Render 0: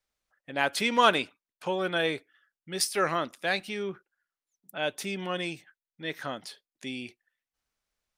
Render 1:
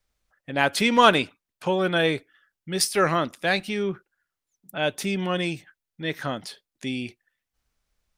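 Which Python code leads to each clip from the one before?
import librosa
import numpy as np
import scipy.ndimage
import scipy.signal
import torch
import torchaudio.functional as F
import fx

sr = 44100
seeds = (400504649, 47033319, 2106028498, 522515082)

y = fx.low_shelf(x, sr, hz=170.0, db=11.5)
y = y * 10.0 ** (4.5 / 20.0)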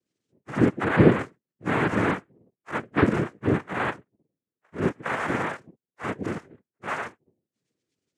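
y = fx.octave_mirror(x, sr, pivot_hz=440.0)
y = fx.noise_vocoder(y, sr, seeds[0], bands=3)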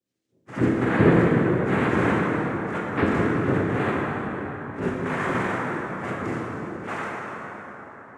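y = fx.rev_plate(x, sr, seeds[1], rt60_s=4.7, hf_ratio=0.5, predelay_ms=0, drr_db=-5.0)
y = y * 10.0 ** (-4.0 / 20.0)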